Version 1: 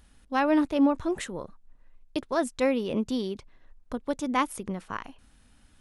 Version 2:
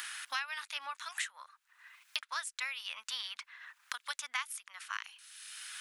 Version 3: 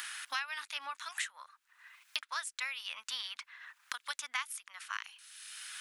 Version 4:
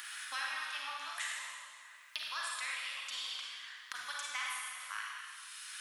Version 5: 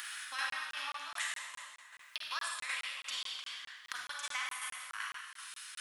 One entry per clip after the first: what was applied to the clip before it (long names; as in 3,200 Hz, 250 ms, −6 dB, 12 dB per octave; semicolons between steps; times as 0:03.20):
inverse Chebyshev high-pass filter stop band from 410 Hz, stop band 60 dB; multiband upward and downward compressor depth 100%; level +1 dB
parametric band 290 Hz +6.5 dB 0.4 octaves
convolution reverb RT60 2.0 s, pre-delay 35 ms, DRR −3.5 dB; level −5 dB
shaped tremolo saw down 2.6 Hz, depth 50%; regular buffer underruns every 0.21 s, samples 1,024, zero, from 0:00.50; level +3 dB